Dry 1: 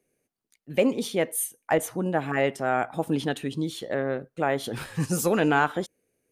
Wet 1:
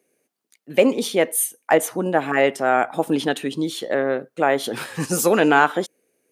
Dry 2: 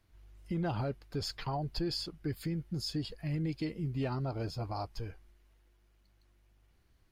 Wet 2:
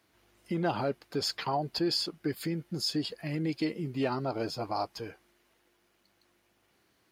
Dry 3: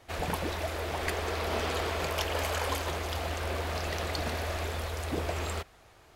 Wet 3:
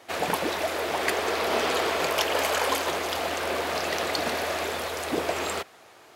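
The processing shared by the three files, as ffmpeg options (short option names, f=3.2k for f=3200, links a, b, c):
-af "highpass=240,volume=7dB"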